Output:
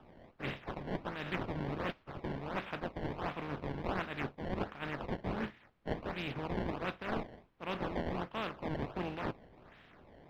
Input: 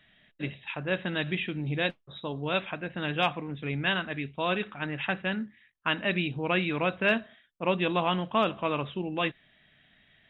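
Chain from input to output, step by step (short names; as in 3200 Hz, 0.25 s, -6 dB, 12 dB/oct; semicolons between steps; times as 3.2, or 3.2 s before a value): spectral contrast lowered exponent 0.39; reverse; compressor 6:1, threshold -39 dBFS, peak gain reduction 18 dB; reverse; decimation with a swept rate 20×, swing 160% 1.4 Hz; added noise pink -79 dBFS; air absorption 340 m; noise-modulated level, depth 55%; gain +8 dB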